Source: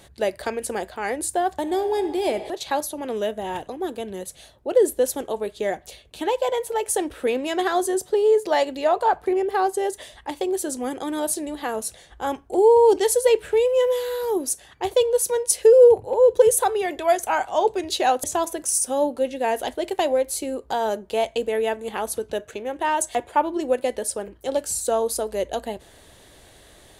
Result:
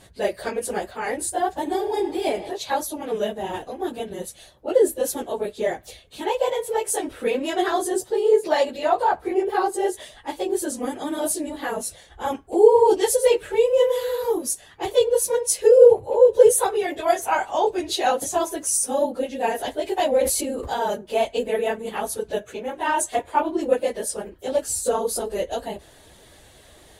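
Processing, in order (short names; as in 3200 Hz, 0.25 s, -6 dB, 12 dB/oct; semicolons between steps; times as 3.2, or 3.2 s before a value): phase scrambler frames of 50 ms; 20.17–20.7 sustainer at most 34 dB/s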